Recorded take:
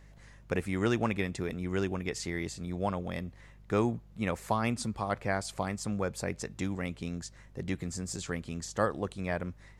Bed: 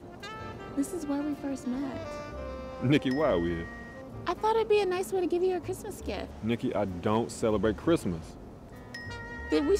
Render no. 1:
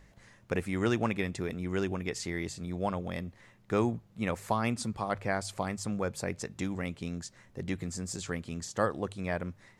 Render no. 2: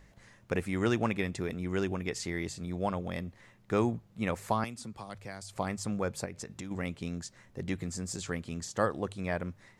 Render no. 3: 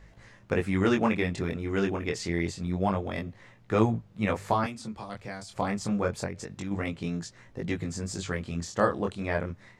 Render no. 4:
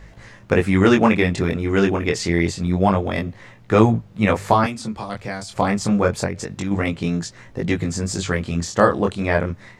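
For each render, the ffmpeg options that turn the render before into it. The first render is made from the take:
ffmpeg -i in.wav -af "bandreject=frequency=50:width_type=h:width=4,bandreject=frequency=100:width_type=h:width=4,bandreject=frequency=150:width_type=h:width=4" out.wav
ffmpeg -i in.wav -filter_complex "[0:a]asettb=1/sr,asplit=3[link_01][link_02][link_03];[link_01]atrim=end=4.644[link_04];[link_02]atrim=start=4.64:end=5.56,asetpts=PTS-STARTPTS,afade=type=in:duration=0.004:curve=qsin,afade=type=out:start_time=0.916:duration=0.004:curve=qsin,acrossover=split=200|3400[link_05][link_06][link_07];[link_05]acompressor=threshold=-48dB:ratio=4[link_08];[link_06]acompressor=threshold=-44dB:ratio=4[link_09];[link_07]acompressor=threshold=-46dB:ratio=4[link_10];[link_08][link_09][link_10]amix=inputs=3:normalize=0[link_11];[link_03]atrim=start=5.556[link_12];[link_04][link_11]acrossfade=duration=0.004:curve1=hsin:curve2=qsin[link_13];[link_13][link_12]acrossfade=duration=0.004:curve1=qsin:curve2=hsin,asettb=1/sr,asplit=3[link_14][link_15][link_16];[link_14]atrim=end=6.254[link_17];[link_15]atrim=start=6.25:end=6.71,asetpts=PTS-STARTPTS,afade=type=in:duration=0.004:curve=qsin,afade=type=out:start_time=0.456:duration=0.004:curve=qsin,acompressor=threshold=-37dB:ratio=6:attack=3.2:release=140:knee=1:detection=peak[link_18];[link_16]atrim=start=6.706[link_19];[link_17][link_18]acrossfade=duration=0.004:curve1=hsin:curve2=qsin[link_20];[link_20][link_19]acrossfade=duration=0.004:curve1=qsin:curve2=hsin" out.wav
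ffmpeg -i in.wav -filter_complex "[0:a]flanger=delay=18:depth=6.9:speed=0.27,asplit=2[link_01][link_02];[link_02]adynamicsmooth=sensitivity=3:basefreq=7800,volume=3dB[link_03];[link_01][link_03]amix=inputs=2:normalize=0" out.wav
ffmpeg -i in.wav -af "volume=10dB,alimiter=limit=-2dB:level=0:latency=1" out.wav

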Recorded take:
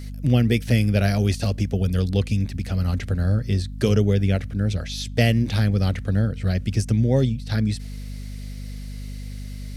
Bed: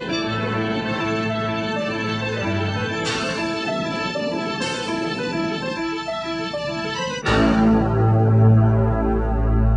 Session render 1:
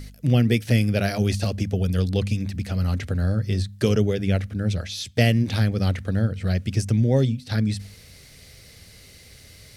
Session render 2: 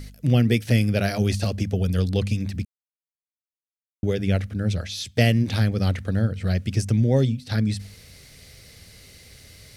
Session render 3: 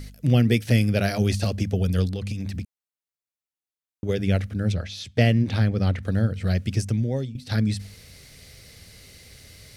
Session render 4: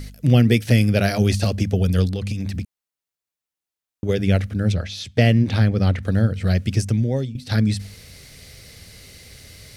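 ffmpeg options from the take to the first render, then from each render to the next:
ffmpeg -i in.wav -af "bandreject=frequency=50:width_type=h:width=4,bandreject=frequency=100:width_type=h:width=4,bandreject=frequency=150:width_type=h:width=4,bandreject=frequency=200:width_type=h:width=4,bandreject=frequency=250:width_type=h:width=4" out.wav
ffmpeg -i in.wav -filter_complex "[0:a]asplit=3[link_01][link_02][link_03];[link_01]atrim=end=2.65,asetpts=PTS-STARTPTS,afade=type=out:start_time=2.646:duration=0.004:curve=hsin[link_04];[link_02]atrim=start=2.65:end=4.03,asetpts=PTS-STARTPTS,volume=0[link_05];[link_03]atrim=start=4.03,asetpts=PTS-STARTPTS,afade=type=in:duration=0.004:curve=hsin[link_06];[link_04][link_05][link_06]concat=n=3:v=0:a=1" out.wav
ffmpeg -i in.wav -filter_complex "[0:a]asplit=3[link_01][link_02][link_03];[link_01]afade=type=out:start_time=2.07:duration=0.02[link_04];[link_02]acompressor=threshold=-25dB:ratio=6:attack=3.2:release=140:knee=1:detection=peak,afade=type=in:start_time=2.07:duration=0.02,afade=type=out:start_time=4.08:duration=0.02[link_05];[link_03]afade=type=in:start_time=4.08:duration=0.02[link_06];[link_04][link_05][link_06]amix=inputs=3:normalize=0,asettb=1/sr,asplit=3[link_07][link_08][link_09];[link_07]atrim=end=4.724[link_10];[link_08]atrim=start=4.72:end=6.03,asetpts=PTS-STARTPTS,afade=type=in:duration=0.004:curve=qsin,afade=type=out:start_time=1.306:duration=0.004:curve=qsin,lowpass=frequency=3000:poles=1[link_11];[link_09]atrim=start=6.026[link_12];[link_10][link_11]acrossfade=duration=0.004:curve1=hsin:curve2=qsin[link_13];[link_13][link_12]acrossfade=duration=0.004:curve1=qsin:curve2=hsin,asplit=2[link_14][link_15];[link_14]atrim=end=7.35,asetpts=PTS-STARTPTS,afade=type=out:start_time=6.68:duration=0.67:silence=0.188365[link_16];[link_15]atrim=start=7.35,asetpts=PTS-STARTPTS,afade=type=in:duration=0.004:curve=hsin:silence=0.188365[link_17];[link_16][link_17]concat=n=2:v=0:a=1" out.wav
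ffmpeg -i in.wav -af "volume=4dB,alimiter=limit=-3dB:level=0:latency=1" out.wav

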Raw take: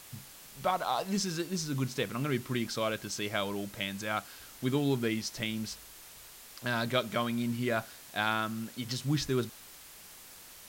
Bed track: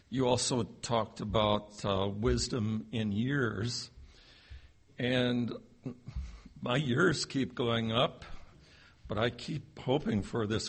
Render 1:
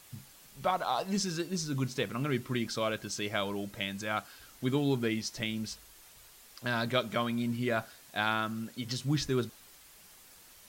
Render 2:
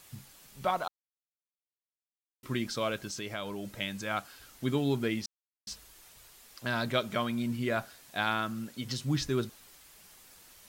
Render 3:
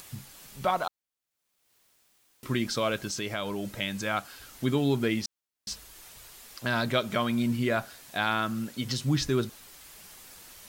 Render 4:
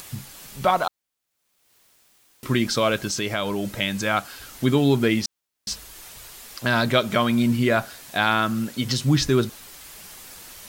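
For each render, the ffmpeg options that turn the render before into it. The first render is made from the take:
ffmpeg -i in.wav -af "afftdn=noise_reduction=6:noise_floor=-52" out.wav
ffmpeg -i in.wav -filter_complex "[0:a]asettb=1/sr,asplit=3[link_01][link_02][link_03];[link_01]atrim=end=3.084[link_04];[link_02]atrim=start=3.08:end=3.65,asetpts=PTS-STARTPTS,afade=type=in:duration=0.004:curve=qsin,afade=type=out:start_time=0.566:duration=0.004:curve=qsin,acompressor=threshold=-36dB:ratio=2:attack=3.2:release=140:knee=1:detection=peak[link_05];[link_03]atrim=start=3.646[link_06];[link_04][link_05]acrossfade=duration=0.004:curve1=hsin:curve2=qsin[link_07];[link_07][link_06]acrossfade=duration=0.004:curve1=qsin:curve2=hsin,asplit=5[link_08][link_09][link_10][link_11][link_12];[link_08]atrim=end=0.88,asetpts=PTS-STARTPTS,afade=type=out:start_time=0.876:duration=0.004:curve=hsin[link_13];[link_09]atrim=start=0.88:end=2.43,asetpts=PTS-STARTPTS,volume=0[link_14];[link_10]atrim=start=2.43:end=5.26,asetpts=PTS-STARTPTS,afade=type=in:duration=0.004:curve=hsin,afade=type=out:start_time=2.826:duration=0.004:curve=hsin[link_15];[link_11]atrim=start=5.26:end=5.67,asetpts=PTS-STARTPTS,volume=0[link_16];[link_12]atrim=start=5.67,asetpts=PTS-STARTPTS,afade=type=in:duration=0.004:curve=hsin[link_17];[link_13][link_14][link_15][link_16][link_17]concat=n=5:v=0:a=1" out.wav
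ffmpeg -i in.wav -filter_complex "[0:a]asplit=2[link_01][link_02];[link_02]alimiter=level_in=0.5dB:limit=-24dB:level=0:latency=1:release=158,volume=-0.5dB,volume=-1.5dB[link_03];[link_01][link_03]amix=inputs=2:normalize=0,acompressor=mode=upward:threshold=-45dB:ratio=2.5" out.wav
ffmpeg -i in.wav -af "volume=7dB" out.wav

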